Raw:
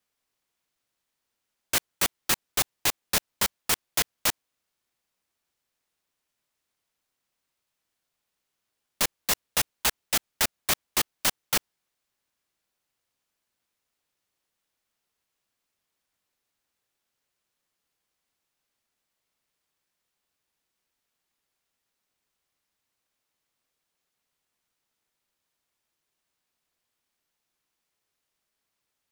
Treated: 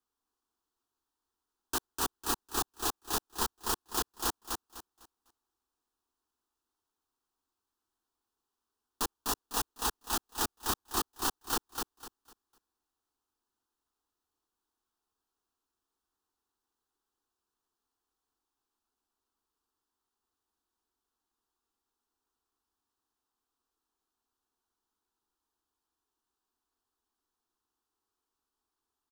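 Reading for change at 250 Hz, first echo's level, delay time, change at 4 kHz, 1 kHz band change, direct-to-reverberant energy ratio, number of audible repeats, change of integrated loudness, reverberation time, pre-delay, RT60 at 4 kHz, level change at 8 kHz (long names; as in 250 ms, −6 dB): −1.0 dB, −4.0 dB, 251 ms, −8.5 dB, −0.5 dB, no reverb audible, 3, −7.5 dB, no reverb audible, no reverb audible, no reverb audible, −7.5 dB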